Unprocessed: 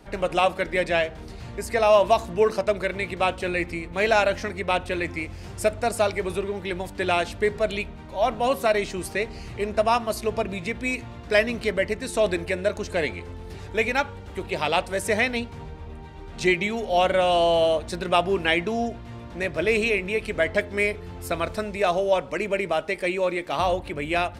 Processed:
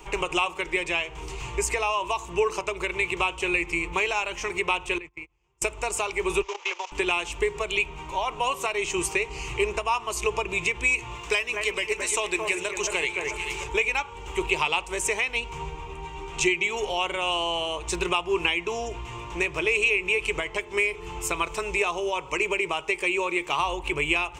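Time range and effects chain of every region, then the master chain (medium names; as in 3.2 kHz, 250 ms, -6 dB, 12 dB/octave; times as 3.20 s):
4.98–5.62 s: gate -30 dBFS, range -36 dB + low-pass 2.7 kHz 6 dB/octave + compression 5:1, threshold -43 dBFS
6.42–6.92 s: one-bit delta coder 32 kbps, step -34 dBFS + steep high-pass 470 Hz + level held to a coarse grid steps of 18 dB
11.15–13.64 s: tilt EQ +1.5 dB/octave + echo whose repeats swap between lows and highs 220 ms, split 2.1 kHz, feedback 53%, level -6.5 dB
whole clip: peaking EQ 170 Hz -13.5 dB 3 oct; compression 6:1, threshold -32 dBFS; rippled EQ curve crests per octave 0.71, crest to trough 14 dB; trim +7.5 dB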